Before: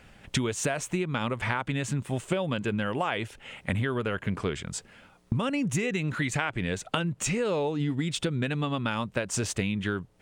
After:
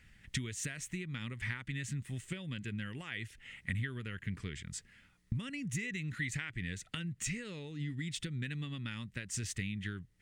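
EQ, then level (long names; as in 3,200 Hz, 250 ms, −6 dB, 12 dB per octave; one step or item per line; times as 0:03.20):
dynamic equaliser 930 Hz, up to −6 dB, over −45 dBFS, Q 1.1
guitar amp tone stack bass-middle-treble 6-0-2
parametric band 1,900 Hz +11 dB 0.36 octaves
+7.0 dB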